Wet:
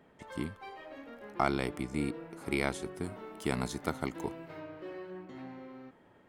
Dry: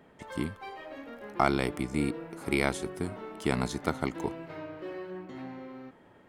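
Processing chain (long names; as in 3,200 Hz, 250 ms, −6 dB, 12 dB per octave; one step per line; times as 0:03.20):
high-shelf EQ 11,000 Hz −2 dB, from 0:03.04 +9 dB, from 0:04.60 −2 dB
level −4 dB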